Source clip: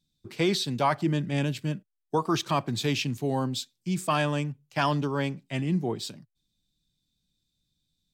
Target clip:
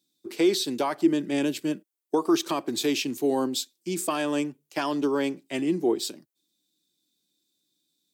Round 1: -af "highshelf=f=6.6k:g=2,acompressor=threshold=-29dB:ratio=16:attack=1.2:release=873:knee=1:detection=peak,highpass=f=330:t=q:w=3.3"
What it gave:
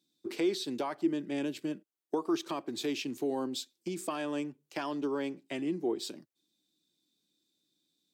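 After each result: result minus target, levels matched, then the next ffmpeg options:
compressor: peak gain reduction +8 dB; 8000 Hz band -3.5 dB
-af "highshelf=f=6.6k:g=2,acompressor=threshold=-20dB:ratio=16:attack=1.2:release=873:knee=1:detection=peak,highpass=f=330:t=q:w=3.3"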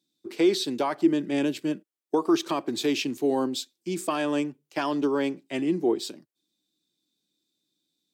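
8000 Hz band -4.5 dB
-af "highshelf=f=6.6k:g=11.5,acompressor=threshold=-20dB:ratio=16:attack=1.2:release=873:knee=1:detection=peak,highpass=f=330:t=q:w=3.3"

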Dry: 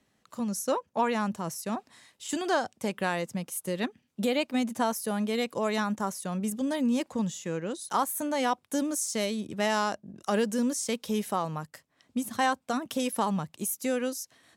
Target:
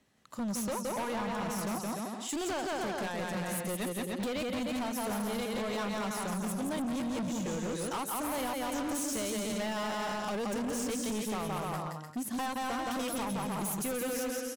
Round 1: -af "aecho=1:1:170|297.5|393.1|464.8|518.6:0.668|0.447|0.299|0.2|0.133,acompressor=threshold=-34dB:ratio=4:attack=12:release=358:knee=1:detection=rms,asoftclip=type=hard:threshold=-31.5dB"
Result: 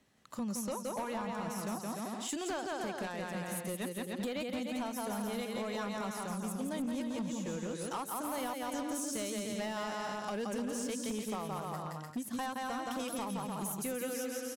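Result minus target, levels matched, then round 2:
compressor: peak gain reduction +6.5 dB
-af "aecho=1:1:170|297.5|393.1|464.8|518.6:0.668|0.447|0.299|0.2|0.133,acompressor=threshold=-25.5dB:ratio=4:attack=12:release=358:knee=1:detection=rms,asoftclip=type=hard:threshold=-31.5dB"

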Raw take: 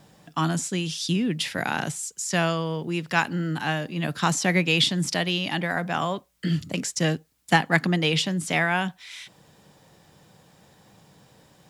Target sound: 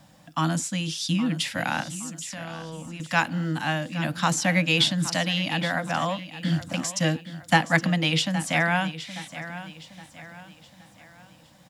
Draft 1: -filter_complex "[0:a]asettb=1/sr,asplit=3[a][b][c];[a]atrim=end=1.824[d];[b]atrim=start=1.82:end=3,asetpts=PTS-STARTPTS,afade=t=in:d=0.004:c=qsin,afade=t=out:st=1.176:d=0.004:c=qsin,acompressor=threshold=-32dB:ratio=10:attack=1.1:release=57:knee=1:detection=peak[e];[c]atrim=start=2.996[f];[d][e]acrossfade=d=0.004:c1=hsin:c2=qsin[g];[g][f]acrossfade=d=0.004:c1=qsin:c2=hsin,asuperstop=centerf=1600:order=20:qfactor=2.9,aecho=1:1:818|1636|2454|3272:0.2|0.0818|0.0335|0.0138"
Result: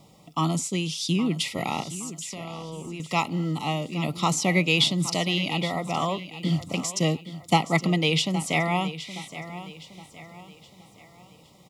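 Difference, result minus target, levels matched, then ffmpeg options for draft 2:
2000 Hz band -4.0 dB
-filter_complex "[0:a]asettb=1/sr,asplit=3[a][b][c];[a]atrim=end=1.824[d];[b]atrim=start=1.82:end=3,asetpts=PTS-STARTPTS,afade=t=in:d=0.004:c=qsin,afade=t=out:st=1.176:d=0.004:c=qsin,acompressor=threshold=-32dB:ratio=10:attack=1.1:release=57:knee=1:detection=peak[e];[c]atrim=start=2.996[f];[d][e]acrossfade=d=0.004:c1=hsin:c2=qsin[g];[g][f]acrossfade=d=0.004:c1=qsin:c2=hsin,asuperstop=centerf=400:order=20:qfactor=2.9,aecho=1:1:818|1636|2454|3272:0.2|0.0818|0.0335|0.0138"

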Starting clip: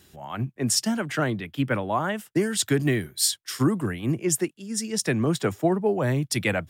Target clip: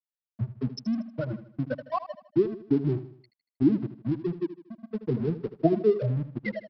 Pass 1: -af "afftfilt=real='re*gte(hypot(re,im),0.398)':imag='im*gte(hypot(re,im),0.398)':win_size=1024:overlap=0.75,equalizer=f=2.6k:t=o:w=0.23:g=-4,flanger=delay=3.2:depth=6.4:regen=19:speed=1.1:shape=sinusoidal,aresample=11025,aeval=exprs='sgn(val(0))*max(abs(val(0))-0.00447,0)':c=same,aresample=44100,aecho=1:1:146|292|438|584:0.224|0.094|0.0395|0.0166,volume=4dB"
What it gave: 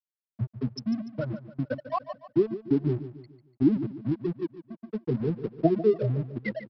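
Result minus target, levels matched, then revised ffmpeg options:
echo 68 ms late
-af "afftfilt=real='re*gte(hypot(re,im),0.398)':imag='im*gte(hypot(re,im),0.398)':win_size=1024:overlap=0.75,equalizer=f=2.6k:t=o:w=0.23:g=-4,flanger=delay=3.2:depth=6.4:regen=19:speed=1.1:shape=sinusoidal,aresample=11025,aeval=exprs='sgn(val(0))*max(abs(val(0))-0.00447,0)':c=same,aresample=44100,aecho=1:1:78|156|234|312:0.224|0.094|0.0395|0.0166,volume=4dB"

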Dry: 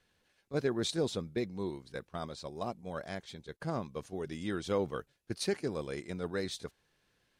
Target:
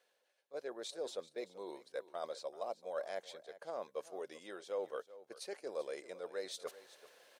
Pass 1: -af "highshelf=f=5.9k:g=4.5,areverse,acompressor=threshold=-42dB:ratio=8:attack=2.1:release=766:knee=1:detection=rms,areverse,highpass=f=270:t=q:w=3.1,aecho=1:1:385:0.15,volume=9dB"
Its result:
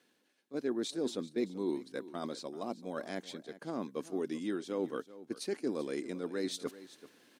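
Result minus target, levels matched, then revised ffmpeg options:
250 Hz band +12.5 dB; compressor: peak gain reduction -5 dB
-af "highshelf=f=5.9k:g=4.5,areverse,acompressor=threshold=-48dB:ratio=8:attack=2.1:release=766:knee=1:detection=rms,areverse,highpass=f=550:t=q:w=3.1,aecho=1:1:385:0.15,volume=9dB"

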